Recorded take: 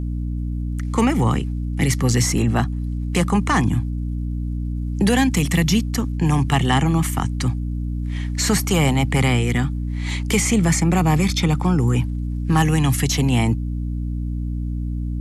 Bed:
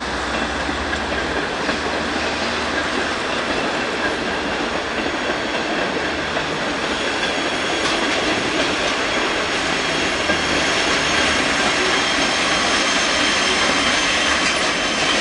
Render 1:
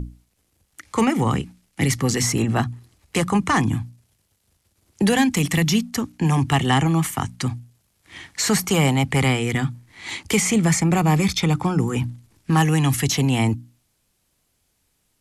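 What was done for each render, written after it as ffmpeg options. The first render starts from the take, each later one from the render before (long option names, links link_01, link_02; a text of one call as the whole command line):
ffmpeg -i in.wav -af "bandreject=frequency=60:width_type=h:width=6,bandreject=frequency=120:width_type=h:width=6,bandreject=frequency=180:width_type=h:width=6,bandreject=frequency=240:width_type=h:width=6,bandreject=frequency=300:width_type=h:width=6" out.wav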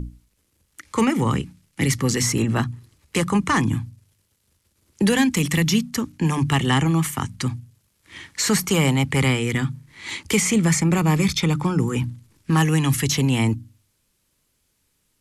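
ffmpeg -i in.wav -af "equalizer=frequency=730:width_type=o:width=0.28:gain=-9,bandreject=frequency=49.33:width_type=h:width=4,bandreject=frequency=98.66:width_type=h:width=4,bandreject=frequency=147.99:width_type=h:width=4" out.wav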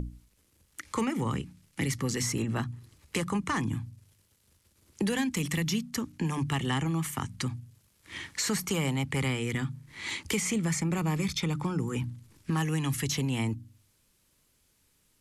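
ffmpeg -i in.wav -af "acompressor=threshold=-35dB:ratio=2" out.wav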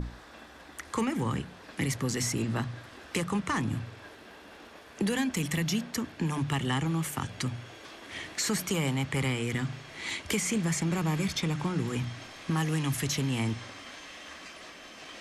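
ffmpeg -i in.wav -i bed.wav -filter_complex "[1:a]volume=-28dB[link_01];[0:a][link_01]amix=inputs=2:normalize=0" out.wav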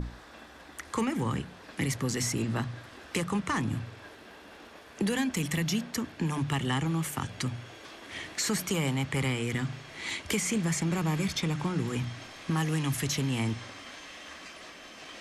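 ffmpeg -i in.wav -af anull out.wav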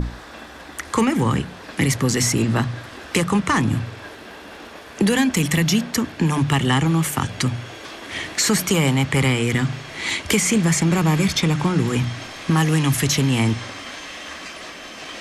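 ffmpeg -i in.wav -af "volume=11dB" out.wav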